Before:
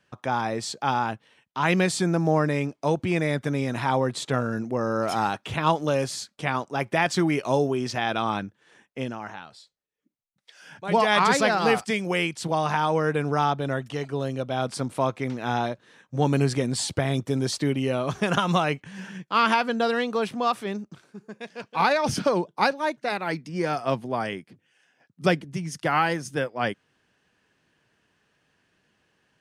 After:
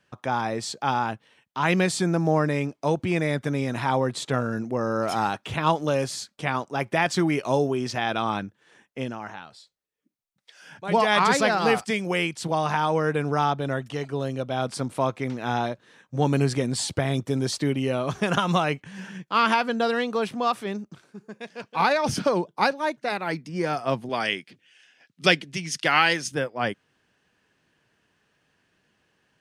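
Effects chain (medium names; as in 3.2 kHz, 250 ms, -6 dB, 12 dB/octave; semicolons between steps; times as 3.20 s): 24.09–26.32 s: frequency weighting D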